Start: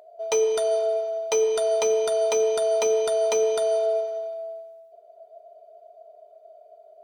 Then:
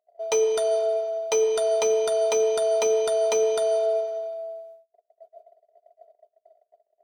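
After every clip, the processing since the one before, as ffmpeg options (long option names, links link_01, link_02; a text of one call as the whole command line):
ffmpeg -i in.wav -af "agate=range=-32dB:threshold=-46dB:ratio=16:detection=peak" out.wav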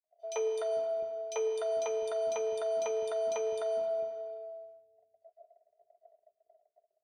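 ffmpeg -i in.wav -filter_complex "[0:a]aemphasis=mode=reproduction:type=50kf,acrossover=split=330|3400[link_01][link_02][link_03];[link_02]adelay=40[link_04];[link_01]adelay=450[link_05];[link_05][link_04][link_03]amix=inputs=3:normalize=0,volume=-8dB" out.wav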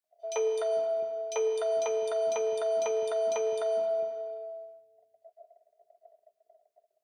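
ffmpeg -i in.wav -af "highpass=120,volume=3.5dB" out.wav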